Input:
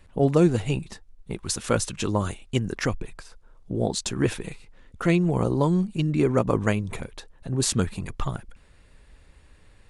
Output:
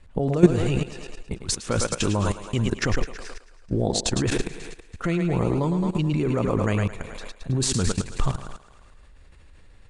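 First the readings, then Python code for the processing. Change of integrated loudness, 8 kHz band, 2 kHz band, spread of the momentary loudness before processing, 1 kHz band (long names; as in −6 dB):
+0.5 dB, +2.0 dB, +1.0 dB, 16 LU, 0.0 dB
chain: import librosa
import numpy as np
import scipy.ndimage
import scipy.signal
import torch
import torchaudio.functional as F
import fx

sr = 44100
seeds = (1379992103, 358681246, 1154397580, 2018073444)

y = fx.echo_thinned(x, sr, ms=108, feedback_pct=64, hz=250.0, wet_db=-7.0)
y = fx.level_steps(y, sr, step_db=15)
y = scipy.signal.sosfilt(scipy.signal.butter(4, 9200.0, 'lowpass', fs=sr, output='sos'), y)
y = fx.low_shelf(y, sr, hz=73.0, db=7.0)
y = y * 10.0 ** (6.5 / 20.0)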